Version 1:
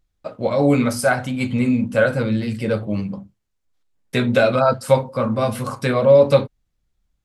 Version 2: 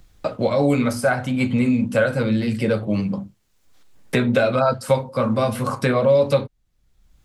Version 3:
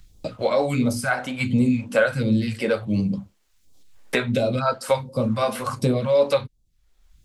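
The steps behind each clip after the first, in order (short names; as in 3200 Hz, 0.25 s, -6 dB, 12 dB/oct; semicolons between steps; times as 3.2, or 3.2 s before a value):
three-band squash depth 70%; gain -1.5 dB
phaser stages 2, 1.4 Hz, lowest notch 100–1700 Hz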